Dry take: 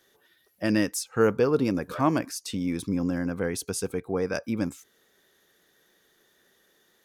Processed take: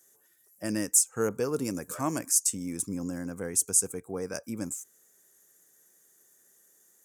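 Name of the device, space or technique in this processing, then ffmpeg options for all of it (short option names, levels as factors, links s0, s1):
budget condenser microphone: -filter_complex "[0:a]highpass=62,highshelf=f=5400:t=q:w=3:g=13,asettb=1/sr,asplit=3[s0][s1][s2];[s0]atrim=end=1.294[s3];[s1]atrim=start=1.29:end=2.5,asetpts=PTS-STARTPTS,afade=t=in:d=0.004:c=qsin,afade=t=out:st=1.206:d=0.004:c=qsin,adynamicequalizer=threshold=0.00891:dfrequency=1700:dqfactor=0.7:tfrequency=1700:tqfactor=0.7:attack=5:release=100:ratio=0.375:range=2:mode=boostabove:tftype=highshelf[s4];[s2]atrim=start=2.496[s5];[s3][s4]acrossfade=d=0.004:c1=hsin:c2=qsin[s6];[s6][s5]acrossfade=d=0.004:c1=qsin:c2=hsin,volume=0.447"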